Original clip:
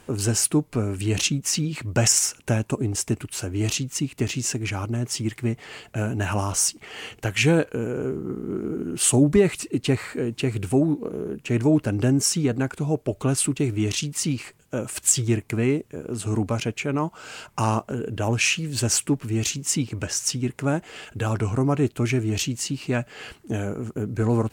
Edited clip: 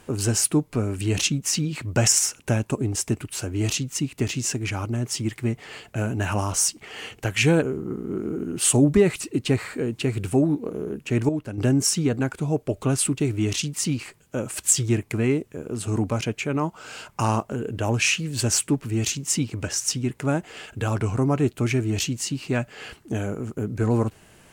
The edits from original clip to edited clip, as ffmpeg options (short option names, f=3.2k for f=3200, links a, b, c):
-filter_complex "[0:a]asplit=4[a][b][c][d];[a]atrim=end=7.622[e];[b]atrim=start=8.008:end=11.682[f];[c]atrim=start=11.678:end=11.972,asetpts=PTS-STARTPTS,volume=-8.5dB[g];[d]atrim=start=11.968[h];[e][f]acrossfade=d=0.004:c1=hsin:c2=hsin[i];[i][g]acrossfade=d=0.004:c1=hsin:c2=hsin[j];[j][h]acrossfade=d=0.004:c1=hsin:c2=hsin"